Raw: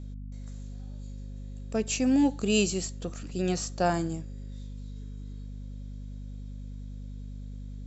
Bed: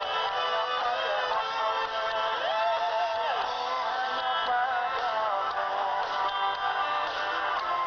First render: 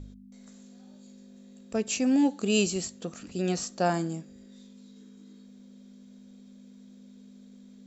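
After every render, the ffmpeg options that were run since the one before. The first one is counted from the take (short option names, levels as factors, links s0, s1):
-af "bandreject=f=50:t=h:w=4,bandreject=f=100:t=h:w=4,bandreject=f=150:t=h:w=4"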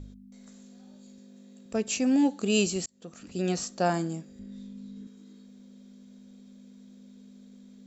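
-filter_complex "[0:a]asettb=1/sr,asplit=3[s0][s1][s2];[s0]atrim=end=1.184[s3];[s1]atrim=start=1.18:end=1.66,asetpts=PTS-STARTPTS,afade=t=in:d=0.004:c=qsin,afade=t=out:st=0.476:d=0.004:c=qsin,highpass=120[s4];[s2]atrim=start=1.656[s5];[s3][s4]acrossfade=d=0.004:c1=hsin:c2=qsin[s6];[s6][s5]acrossfade=d=0.004:c1=qsin:c2=hsin,asettb=1/sr,asplit=3[s7][s8][s9];[s7]atrim=end=4.394[s10];[s8]atrim=start=4.39:end=5.07,asetpts=PTS-STARTPTS,afade=t=in:d=0.004:c=qsin,afade=t=out:st=0.676:d=0.004:c=qsin,bass=f=250:g=13,treble=f=4000:g=-5[s11];[s9]atrim=start=5.066[s12];[s10][s11]acrossfade=d=0.004:c1=hsin:c2=qsin[s13];[s13][s12]acrossfade=d=0.004:c1=qsin:c2=hsin,asplit=2[s14][s15];[s14]atrim=end=2.86,asetpts=PTS-STARTPTS,afade=t=out:st=2.856:d=0.004:c=hsin[s16];[s15]atrim=start=2.86,asetpts=PTS-STARTPTS,afade=t=in:d=0.52[s17];[s16][s17]concat=n=2:v=0:a=1"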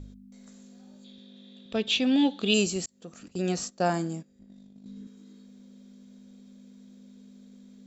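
-filter_complex "[0:a]asettb=1/sr,asplit=3[s0][s1][s2];[s0]atrim=end=1.044[s3];[s1]atrim=start=1.04:end=2.54,asetpts=PTS-STARTPTS,afade=t=in:d=0.004:c=qsin,afade=t=out:st=1.496:d=0.004:c=qsin,lowpass=f=3500:t=q:w=11[s4];[s2]atrim=start=2.536[s5];[s3][s4]acrossfade=d=0.004:c1=hsin:c2=qsin[s6];[s6][s5]acrossfade=d=0.004:c1=qsin:c2=hsin,asettb=1/sr,asplit=3[s7][s8][s9];[s7]atrim=end=3.284[s10];[s8]atrim=start=3.28:end=4.86,asetpts=PTS-STARTPTS,afade=t=in:d=0.004:c=qsin,afade=t=out:st=1.576:d=0.004:c=qsin,agate=range=0.251:threshold=0.00794:ratio=16:release=100:detection=peak[s11];[s9]atrim=start=4.856[s12];[s10][s11]acrossfade=d=0.004:c1=hsin:c2=qsin[s13];[s13][s12]acrossfade=d=0.004:c1=qsin:c2=hsin"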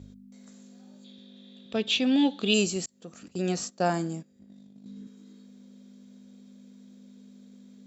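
-af "highpass=73"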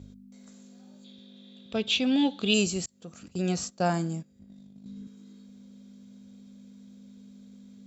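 -af "asubboost=boost=3.5:cutoff=150,bandreject=f=1800:w=16"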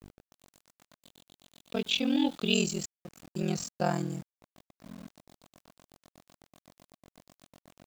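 -af "aeval=exprs='val(0)*sin(2*PI*21*n/s)':c=same,aeval=exprs='val(0)*gte(abs(val(0)),0.00531)':c=same"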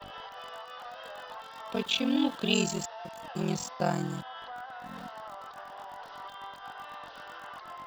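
-filter_complex "[1:a]volume=0.168[s0];[0:a][s0]amix=inputs=2:normalize=0"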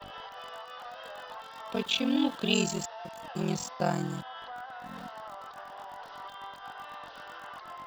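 -af anull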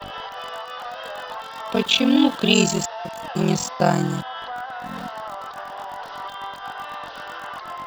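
-af "volume=3.35,alimiter=limit=0.708:level=0:latency=1"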